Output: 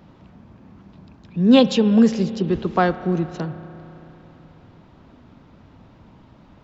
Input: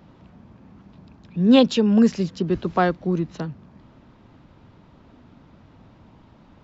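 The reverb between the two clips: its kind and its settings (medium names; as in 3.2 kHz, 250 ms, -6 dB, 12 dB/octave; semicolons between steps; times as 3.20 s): spring tank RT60 3.6 s, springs 31 ms, chirp 50 ms, DRR 13 dB; trim +1.5 dB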